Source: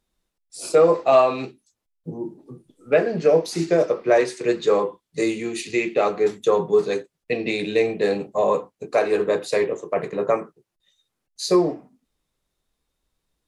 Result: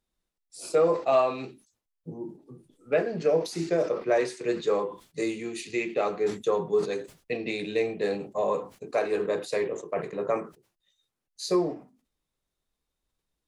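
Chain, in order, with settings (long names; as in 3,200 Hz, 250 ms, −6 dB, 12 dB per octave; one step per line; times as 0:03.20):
level that may fall only so fast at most 150 dB per second
level −7 dB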